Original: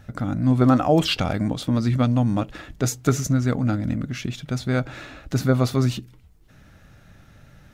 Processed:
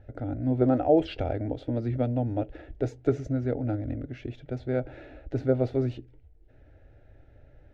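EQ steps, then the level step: LPF 1300 Hz 12 dB/oct; bell 130 Hz -2.5 dB; fixed phaser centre 460 Hz, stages 4; 0.0 dB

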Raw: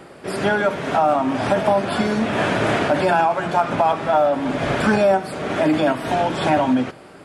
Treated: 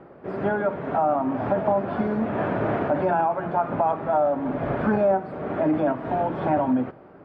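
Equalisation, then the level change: LPF 1200 Hz 12 dB/oct; -4.0 dB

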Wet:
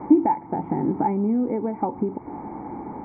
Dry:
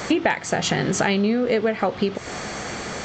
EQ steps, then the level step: vocal tract filter u; air absorption 390 m; band shelf 1400 Hz +13.5 dB; +8.0 dB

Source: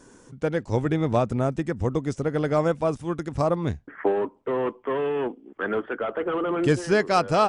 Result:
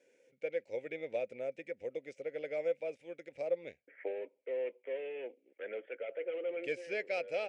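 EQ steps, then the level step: double band-pass 1100 Hz, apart 2.1 oct; tilt +2 dB/oct; -3.5 dB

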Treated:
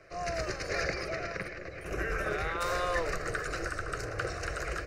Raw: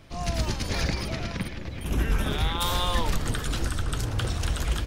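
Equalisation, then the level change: three-band isolator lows -16 dB, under 210 Hz, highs -20 dB, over 6000 Hz; fixed phaser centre 910 Hz, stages 6; +3.0 dB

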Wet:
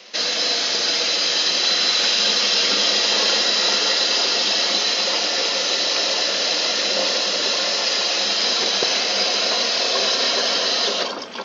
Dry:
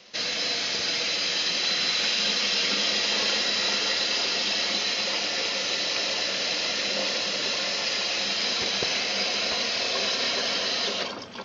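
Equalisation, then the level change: HPF 270 Hz 12 dB/oct; dynamic EQ 2300 Hz, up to -6 dB, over -43 dBFS, Q 2.1; +8.0 dB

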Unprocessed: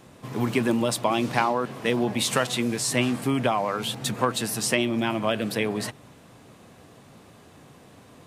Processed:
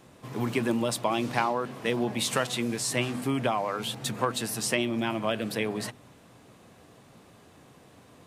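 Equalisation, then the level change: notches 50/100/150/200/250 Hz; -3.5 dB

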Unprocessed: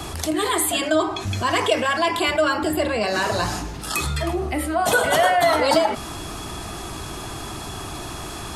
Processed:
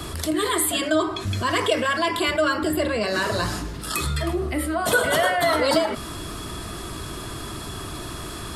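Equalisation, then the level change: thirty-one-band EQ 800 Hz -11 dB, 2500 Hz -4 dB, 6300 Hz -6 dB; 0.0 dB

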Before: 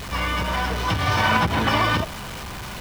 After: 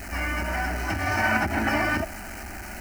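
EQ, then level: fixed phaser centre 710 Hz, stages 8; 0.0 dB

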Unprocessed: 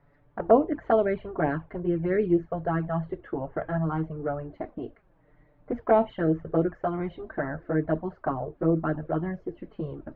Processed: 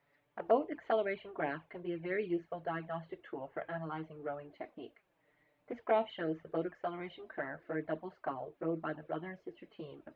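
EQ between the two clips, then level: HPF 590 Hz 6 dB/oct; resonant high shelf 1900 Hz +7 dB, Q 1.5; -6.0 dB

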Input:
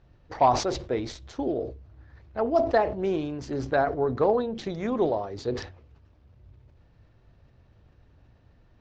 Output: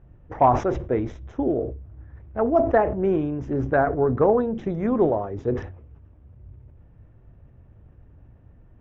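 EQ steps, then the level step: low shelf 460 Hz +8 dB; dynamic EQ 1500 Hz, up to +5 dB, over -38 dBFS, Q 1.4; running mean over 10 samples; 0.0 dB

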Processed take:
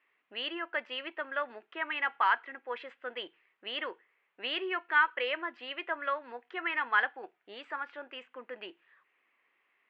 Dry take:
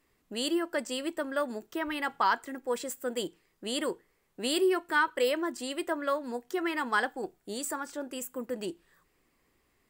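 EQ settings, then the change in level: HPF 590 Hz 6 dB/oct; steep low-pass 2700 Hz 36 dB/oct; tilt +4.5 dB/oct; 0.0 dB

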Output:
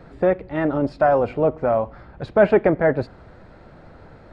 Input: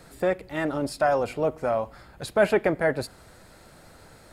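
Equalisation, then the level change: tape spacing loss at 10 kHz 38 dB; +8.0 dB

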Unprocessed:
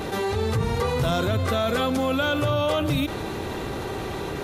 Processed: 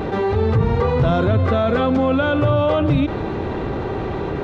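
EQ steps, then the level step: tape spacing loss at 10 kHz 34 dB; +8.0 dB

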